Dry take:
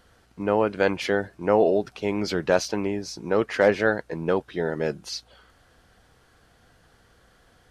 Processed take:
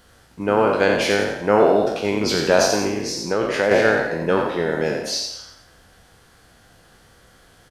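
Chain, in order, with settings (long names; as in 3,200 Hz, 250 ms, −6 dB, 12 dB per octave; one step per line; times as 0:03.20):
peak hold with a decay on every bin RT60 0.62 s
high-shelf EQ 4,400 Hz +6 dB
on a send: echo with shifted repeats 87 ms, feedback 44%, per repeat +35 Hz, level −6 dB
0:02.86–0:03.71: on the sum: downward compressor 2 to 1, threshold −22 dBFS, peak gain reduction 6.5 dB
level +2.5 dB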